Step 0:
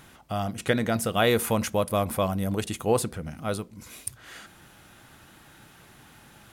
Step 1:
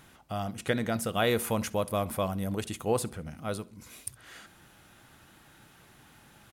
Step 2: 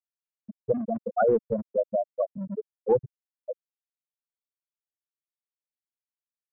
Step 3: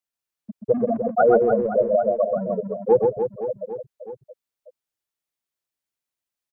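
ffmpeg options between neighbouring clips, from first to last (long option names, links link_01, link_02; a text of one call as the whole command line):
ffmpeg -i in.wav -af "aecho=1:1:66|132|198:0.0708|0.0319|0.0143,volume=-4.5dB" out.wav
ffmpeg -i in.wav -filter_complex "[0:a]afftfilt=real='re*gte(hypot(re,im),0.224)':imag='im*gte(hypot(re,im),0.224)':win_size=1024:overlap=0.75,acrossover=split=320|660|2700[link_01][link_02][link_03][link_04];[link_01]asoftclip=type=tanh:threshold=-40dB[link_05];[link_05][link_02][link_03][link_04]amix=inputs=4:normalize=0,volume=8dB" out.wav
ffmpeg -i in.wav -filter_complex "[0:a]acrossover=split=190[link_01][link_02];[link_01]alimiter=level_in=15dB:limit=-24dB:level=0:latency=1,volume=-15dB[link_03];[link_03][link_02]amix=inputs=2:normalize=0,aecho=1:1:130|299|518.7|804.3|1176:0.631|0.398|0.251|0.158|0.1,volume=5.5dB" out.wav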